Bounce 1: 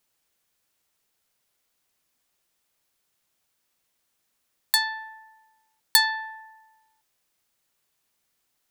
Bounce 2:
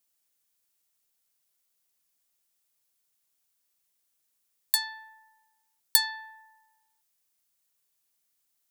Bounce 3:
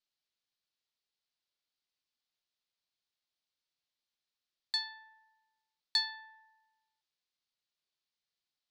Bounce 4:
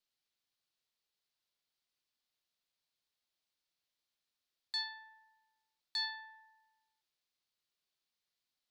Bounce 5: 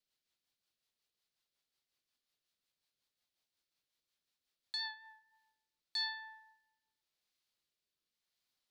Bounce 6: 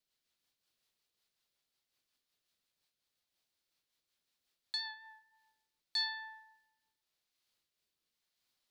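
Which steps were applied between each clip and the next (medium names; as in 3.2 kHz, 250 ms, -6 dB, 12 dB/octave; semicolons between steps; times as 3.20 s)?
treble shelf 4.7 kHz +11.5 dB; trim -10.5 dB
four-pole ladder low-pass 5 kHz, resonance 45%
peak limiter -29 dBFS, peak gain reduction 11 dB; trim +1 dB
rotary cabinet horn 5.5 Hz, later 0.9 Hz, at 4.74 s; trim +3 dB
random flutter of the level, depth 60%; trim +5.5 dB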